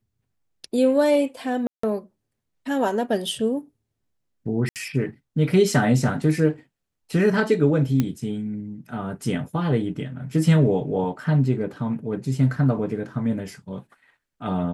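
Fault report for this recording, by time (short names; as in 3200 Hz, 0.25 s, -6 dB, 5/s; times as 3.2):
1.67–1.83 gap 0.164 s
4.69–4.76 gap 68 ms
8 pop -9 dBFS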